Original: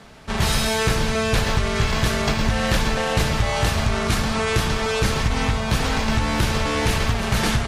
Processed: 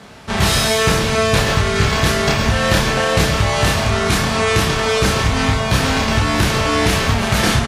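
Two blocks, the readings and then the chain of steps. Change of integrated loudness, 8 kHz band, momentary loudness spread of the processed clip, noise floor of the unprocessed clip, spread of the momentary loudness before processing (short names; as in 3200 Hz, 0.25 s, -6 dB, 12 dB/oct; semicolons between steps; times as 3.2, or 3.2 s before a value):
+5.5 dB, +6.5 dB, 2 LU, -25 dBFS, 1 LU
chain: HPF 61 Hz; doubler 30 ms -3 dB; gain +4.5 dB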